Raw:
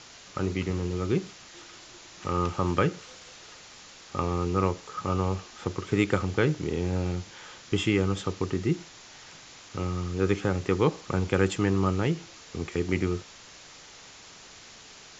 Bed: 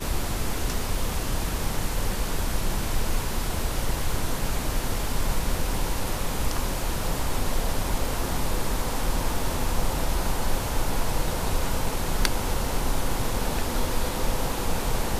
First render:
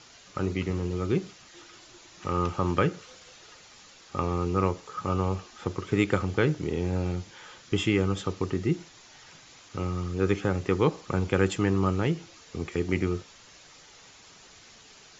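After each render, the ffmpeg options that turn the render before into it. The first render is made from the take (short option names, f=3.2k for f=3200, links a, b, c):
-af "afftdn=nr=6:nf=-49"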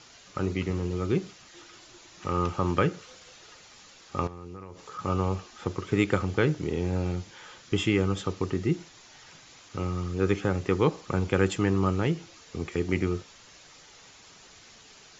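-filter_complex "[0:a]asettb=1/sr,asplit=3[a][b][c];[a]atrim=end=4.274[d];[b]atrim=start=4.27:end=4.99,asetpts=PTS-STARTPTS,afade=t=in:d=0.004:c=qsin,afade=t=out:st=0.716:d=0.004:c=qsin,acompressor=threshold=-37dB:ratio=12:attack=3.2:release=140:knee=1:detection=peak[e];[c]atrim=start=4.986[f];[d][e]acrossfade=d=0.004:c1=hsin:c2=qsin[g];[g][f]acrossfade=d=0.004:c1=qsin:c2=hsin"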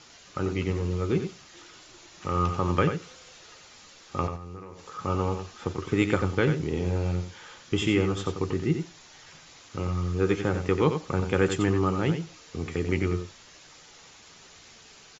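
-filter_complex "[0:a]asplit=2[a][b];[b]adelay=13,volume=-11.5dB[c];[a][c]amix=inputs=2:normalize=0,asplit=2[d][e];[e]aecho=0:1:90:0.398[f];[d][f]amix=inputs=2:normalize=0"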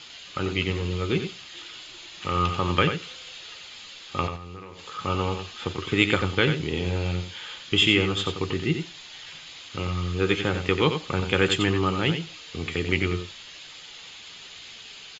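-af "equalizer=f=3.2k:w=1:g=14,bandreject=f=5.7k:w=6.8"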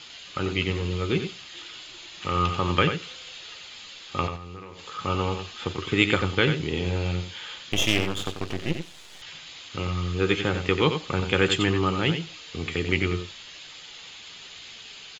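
-filter_complex "[0:a]asettb=1/sr,asplit=3[a][b][c];[a]atrim=end=7.724[d];[b]atrim=start=7.72:end=9.22,asetpts=PTS-STARTPTS,afade=t=in:d=0.004:c=qsin,afade=t=out:st=1.496:d=0.004:c=qsin,aeval=exprs='max(val(0),0)':c=same[e];[c]atrim=start=9.216[f];[d][e]acrossfade=d=0.004:c1=hsin:c2=qsin[g];[g][f]acrossfade=d=0.004:c1=qsin:c2=hsin"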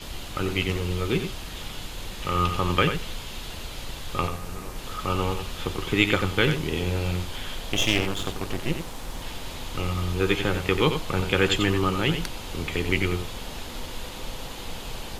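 -filter_complex "[1:a]volume=-10dB[a];[0:a][a]amix=inputs=2:normalize=0"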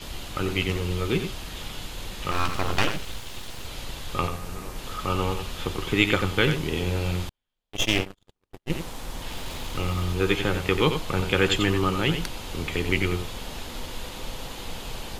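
-filter_complex "[0:a]asettb=1/sr,asplit=3[a][b][c];[a]atrim=end=2.314[d];[b]atrim=start=2.31:end=3.67,asetpts=PTS-STARTPTS,afade=t=in:d=0.004:c=qsin,afade=t=out:st=1.356:d=0.004:c=qsin,aeval=exprs='abs(val(0))':c=same[e];[c]atrim=start=3.666[f];[d][e]acrossfade=d=0.004:c1=hsin:c2=qsin[g];[g][f]acrossfade=d=0.004:c1=qsin:c2=hsin,asettb=1/sr,asplit=3[h][i][j];[h]atrim=end=7.294[k];[i]atrim=start=7.29:end=8.7,asetpts=PTS-STARTPTS,afade=t=in:d=0.004:c=qsin,afade=t=out:st=1.406:d=0.004:c=qsin,agate=range=-52dB:threshold=-24dB:ratio=16:release=100:detection=peak[l];[j]atrim=start=8.696[m];[k][l]acrossfade=d=0.004:c1=hsin:c2=qsin[n];[n][m]acrossfade=d=0.004:c1=qsin:c2=hsin,asettb=1/sr,asplit=3[o][p][q];[o]atrim=end=9.314[r];[p]atrim=start=9.31:end=10.13,asetpts=PTS-STARTPTS,afade=t=in:d=0.004:c=qsin,afade=t=out:st=0.816:d=0.004:c=qsin,aeval=exprs='val(0)+0.5*0.0075*sgn(val(0))':c=same[s];[q]atrim=start=10.126[t];[r][s]acrossfade=d=0.004:c1=hsin:c2=qsin[u];[u][t]acrossfade=d=0.004:c1=qsin:c2=hsin"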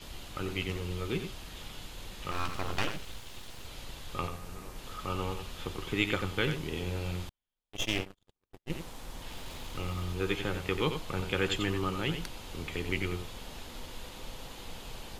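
-af "volume=-8.5dB"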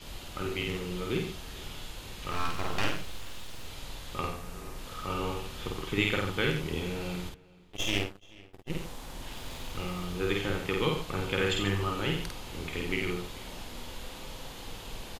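-filter_complex "[0:a]asplit=2[a][b];[b]adelay=50,volume=-2dB[c];[a][c]amix=inputs=2:normalize=0,asplit=2[d][e];[e]adelay=431,lowpass=f=4.2k:p=1,volume=-22dB,asplit=2[f][g];[g]adelay=431,lowpass=f=4.2k:p=1,volume=0.28[h];[d][f][h]amix=inputs=3:normalize=0"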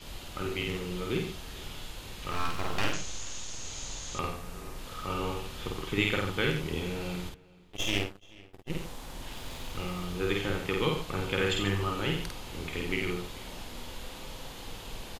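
-filter_complex "[0:a]asettb=1/sr,asplit=3[a][b][c];[a]atrim=end=2.934[d];[b]atrim=start=2.93:end=4.19,asetpts=PTS-STARTPTS,afade=t=in:d=0.004:c=qsin,afade=t=out:st=1.256:d=0.004:c=qsin,lowpass=f=6.6k:t=q:w=7.4[e];[c]atrim=start=4.186[f];[d][e]acrossfade=d=0.004:c1=hsin:c2=qsin[g];[g][f]acrossfade=d=0.004:c1=qsin:c2=hsin"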